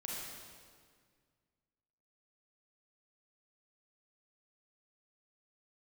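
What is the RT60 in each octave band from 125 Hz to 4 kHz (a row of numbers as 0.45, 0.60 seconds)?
2.5, 2.2, 1.9, 1.8, 1.7, 1.6 seconds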